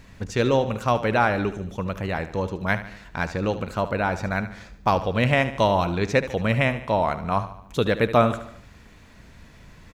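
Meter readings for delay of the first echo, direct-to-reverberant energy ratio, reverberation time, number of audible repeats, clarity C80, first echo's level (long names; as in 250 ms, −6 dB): 74 ms, no reverb audible, no reverb audible, 4, no reverb audible, −13.0 dB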